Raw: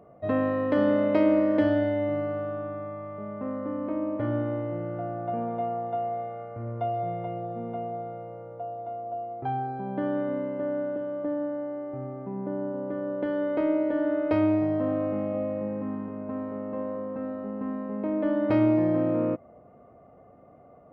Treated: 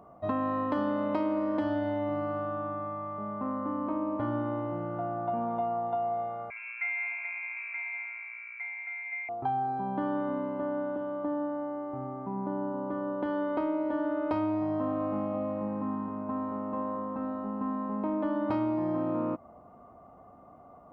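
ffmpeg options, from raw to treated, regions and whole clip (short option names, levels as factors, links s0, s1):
-filter_complex "[0:a]asettb=1/sr,asplit=3[s0][s1][s2];[s0]atrim=end=6.504[s3];[s1]atrim=start=6.5:end=9.29,asetpts=PTS-STARTPTS,afade=t=in:d=0.004:c=qsin,afade=t=out:st=2.786:d=0.004:c=qsin,lowshelf=f=290:t=q:w=1.5:g=-11.5,adynamicsmooth=sensitivity=3:basefreq=1500,lowpass=f=2400:t=q:w=0.5098,lowpass=f=2400:t=q:w=0.6013,lowpass=f=2400:t=q:w=0.9,lowpass=f=2400:t=q:w=2.563,afreqshift=-2800[s4];[s2]atrim=start=9.286[s5];[s3][s4]acrossfade=d=0.004:c1=hsin:c2=qsin[s6];[s6][s5]acrossfade=d=0.004:c1=qsin:c2=hsin,equalizer=f=125:t=o:w=1:g=-7,equalizer=f=500:t=o:w=1:g=-10,equalizer=f=1000:t=o:w=1:g=9,equalizer=f=2000:t=o:w=1:g=-9,acompressor=threshold=0.0316:ratio=4,volume=1.41"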